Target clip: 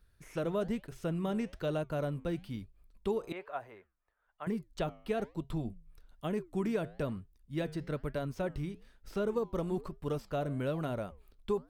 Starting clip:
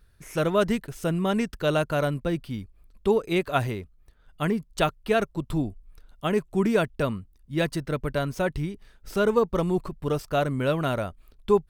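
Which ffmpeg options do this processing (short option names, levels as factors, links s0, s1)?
-filter_complex "[0:a]flanger=delay=3.6:depth=6.1:regen=-87:speed=1.1:shape=sinusoidal,asettb=1/sr,asplit=3[s0][s1][s2];[s0]atrim=end=3.324[s3];[s1]atrim=start=3.32:end=4.47,asetpts=PTS-STARTPTS,afade=t=in:d=0.004:c=qsin,afade=t=out:st=1.146:d=0.004:c=qsin,acrossover=split=560 2100:gain=0.0708 1 0.0794[s4][s5][s6];[s4][s5][s6]amix=inputs=3:normalize=0[s7];[s2]atrim=start=4.466[s8];[s3][s7]acrossfade=d=0.004:c1=hsin:c2=qsin[s9];[s9][s8]acrossfade=d=0.004:c1=qsin:c2=hsin,acrossover=split=770|5100[s10][s11][s12];[s10]acompressor=threshold=0.0501:ratio=4[s13];[s11]acompressor=threshold=0.00794:ratio=4[s14];[s12]acompressor=threshold=0.00112:ratio=4[s15];[s13][s14][s15]amix=inputs=3:normalize=0,volume=0.708"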